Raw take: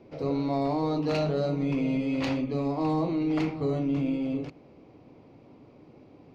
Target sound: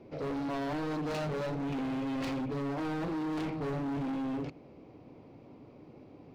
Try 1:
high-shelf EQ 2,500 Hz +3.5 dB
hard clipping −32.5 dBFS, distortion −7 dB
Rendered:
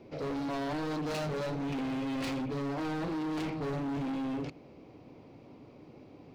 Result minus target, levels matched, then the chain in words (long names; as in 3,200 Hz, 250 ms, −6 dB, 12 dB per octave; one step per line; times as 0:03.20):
4,000 Hz band +3.0 dB
high-shelf EQ 2,500 Hz −3 dB
hard clipping −32.5 dBFS, distortion −7 dB